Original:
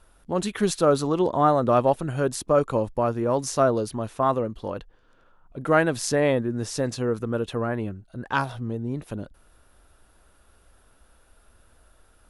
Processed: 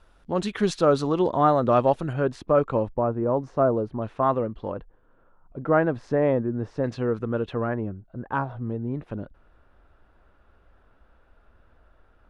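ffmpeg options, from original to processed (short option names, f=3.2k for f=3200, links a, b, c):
-af "asetnsamples=n=441:p=0,asendcmd='2.13 lowpass f 2600;2.89 lowpass f 1100;4.02 lowpass f 2500;4.72 lowpass f 1300;6.84 lowpass f 2800;7.74 lowpass f 1200;8.6 lowpass f 2100',lowpass=5.3k"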